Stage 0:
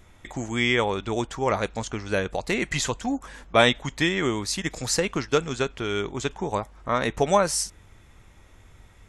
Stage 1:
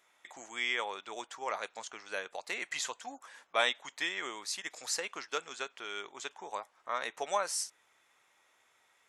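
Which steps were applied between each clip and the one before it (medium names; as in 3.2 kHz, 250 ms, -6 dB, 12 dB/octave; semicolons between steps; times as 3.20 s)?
high-pass 720 Hz 12 dB/octave; trim -8.5 dB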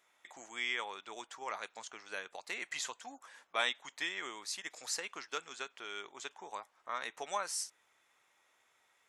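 dynamic bell 560 Hz, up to -5 dB, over -47 dBFS, Q 1.6; trim -3 dB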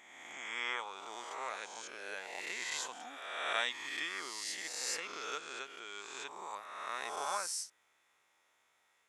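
reverse spectral sustain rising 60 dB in 1.50 s; trim -4.5 dB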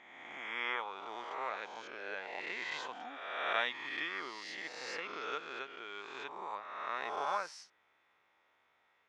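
distance through air 260 m; trim +3.5 dB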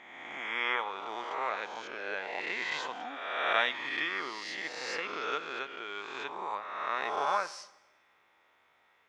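reverberation RT60 1.0 s, pre-delay 6 ms, DRR 15.5 dB; trim +5.5 dB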